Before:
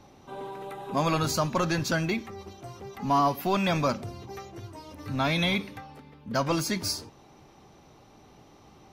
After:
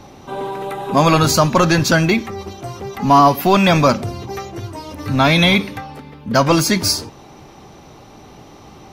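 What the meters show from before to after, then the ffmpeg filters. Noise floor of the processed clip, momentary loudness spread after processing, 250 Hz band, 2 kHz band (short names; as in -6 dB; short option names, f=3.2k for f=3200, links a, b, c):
-42 dBFS, 18 LU, +13.0 dB, +13.0 dB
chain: -af "acontrast=69,volume=6.5dB"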